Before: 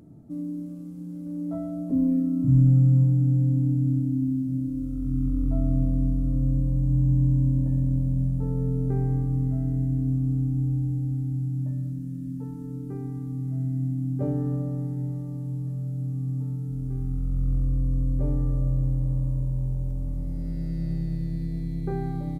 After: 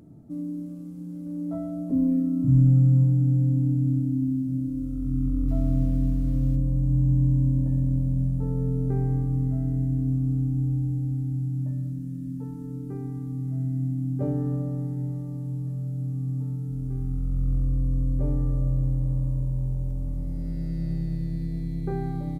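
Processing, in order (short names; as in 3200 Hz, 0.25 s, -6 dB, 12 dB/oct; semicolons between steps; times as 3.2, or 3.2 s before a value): 5.47–6.55 added noise pink -60 dBFS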